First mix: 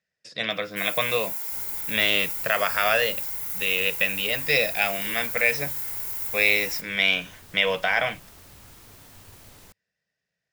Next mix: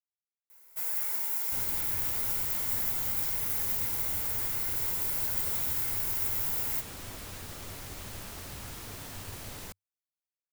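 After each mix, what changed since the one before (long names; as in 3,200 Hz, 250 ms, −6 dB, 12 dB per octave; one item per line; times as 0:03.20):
speech: muted
second sound +7.0 dB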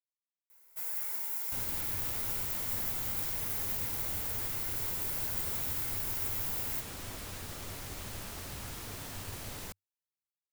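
first sound −4.5 dB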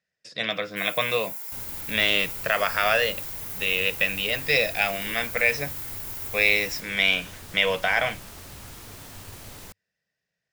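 speech: unmuted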